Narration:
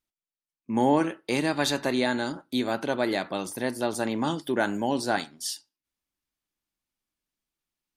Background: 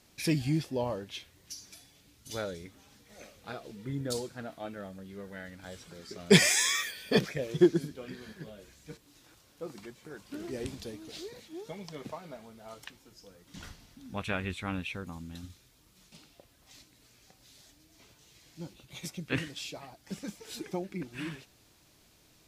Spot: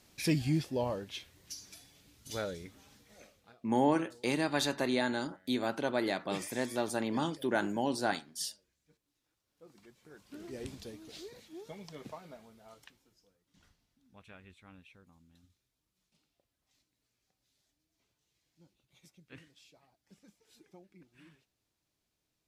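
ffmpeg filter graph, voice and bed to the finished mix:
-filter_complex "[0:a]adelay=2950,volume=0.531[s0];[1:a]volume=7.94,afade=t=out:st=2.87:d=0.69:silence=0.0749894,afade=t=in:st=9.43:d=1.31:silence=0.112202,afade=t=out:st=12.18:d=1.21:silence=0.149624[s1];[s0][s1]amix=inputs=2:normalize=0"

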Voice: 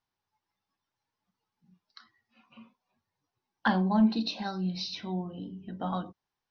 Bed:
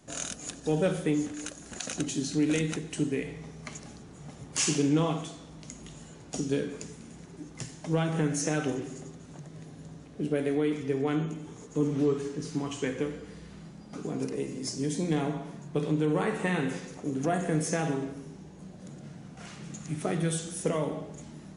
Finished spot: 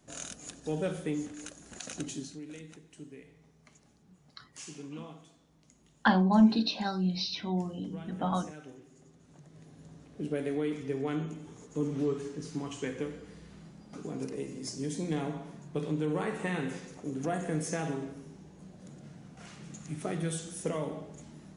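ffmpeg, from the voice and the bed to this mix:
-filter_complex "[0:a]adelay=2400,volume=1.26[s0];[1:a]volume=2.51,afade=t=out:st=2.11:d=0.29:silence=0.237137,afade=t=in:st=8.9:d=1.27:silence=0.199526[s1];[s0][s1]amix=inputs=2:normalize=0"

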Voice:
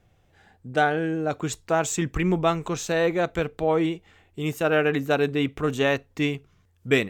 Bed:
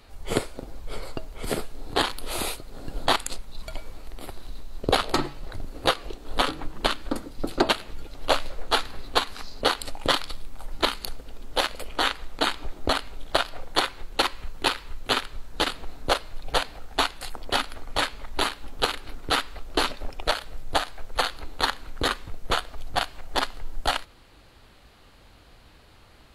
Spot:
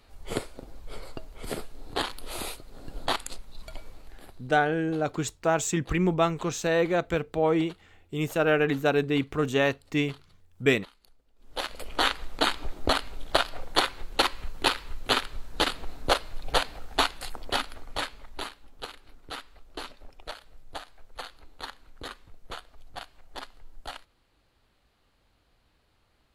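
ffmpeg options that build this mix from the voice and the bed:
-filter_complex "[0:a]adelay=3750,volume=0.841[s0];[1:a]volume=11.9,afade=t=out:st=3.87:d=0.77:silence=0.0794328,afade=t=in:st=11.36:d=0.65:silence=0.0421697,afade=t=out:st=16.99:d=1.65:silence=0.188365[s1];[s0][s1]amix=inputs=2:normalize=0"

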